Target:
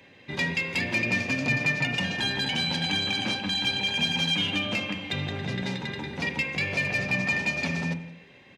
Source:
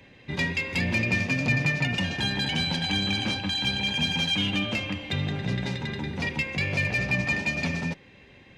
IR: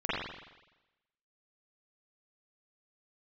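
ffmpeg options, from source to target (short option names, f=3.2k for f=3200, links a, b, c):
-filter_complex "[0:a]highpass=f=270:p=1,aecho=1:1:171:0.0841,asplit=2[a][b];[1:a]atrim=start_sample=2205,afade=t=out:st=0.36:d=0.01,atrim=end_sample=16317,lowshelf=f=470:g=11[c];[b][c]afir=irnorm=-1:irlink=0,volume=-22.5dB[d];[a][d]amix=inputs=2:normalize=0"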